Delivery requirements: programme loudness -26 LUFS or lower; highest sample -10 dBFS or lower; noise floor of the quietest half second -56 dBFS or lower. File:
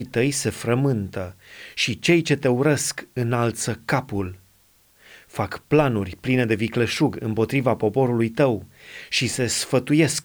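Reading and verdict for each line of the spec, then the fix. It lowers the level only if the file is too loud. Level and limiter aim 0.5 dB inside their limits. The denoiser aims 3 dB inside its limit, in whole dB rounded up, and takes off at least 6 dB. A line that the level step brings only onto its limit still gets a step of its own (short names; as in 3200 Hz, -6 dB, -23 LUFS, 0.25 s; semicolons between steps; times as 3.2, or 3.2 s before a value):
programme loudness -22.0 LUFS: fail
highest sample -6.0 dBFS: fail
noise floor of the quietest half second -58 dBFS: OK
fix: gain -4.5 dB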